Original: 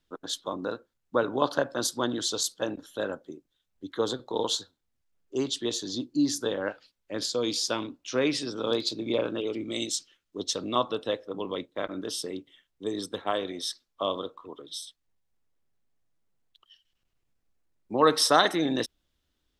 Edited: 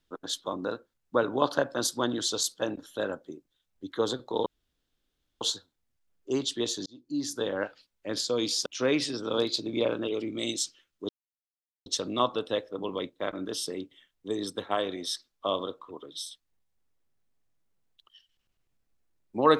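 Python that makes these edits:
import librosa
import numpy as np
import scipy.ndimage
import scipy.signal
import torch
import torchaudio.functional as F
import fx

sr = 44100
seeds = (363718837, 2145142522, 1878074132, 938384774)

y = fx.edit(x, sr, fx.insert_room_tone(at_s=4.46, length_s=0.95),
    fx.fade_in_span(start_s=5.91, length_s=0.67),
    fx.cut(start_s=7.71, length_s=0.28),
    fx.insert_silence(at_s=10.42, length_s=0.77), tone=tone)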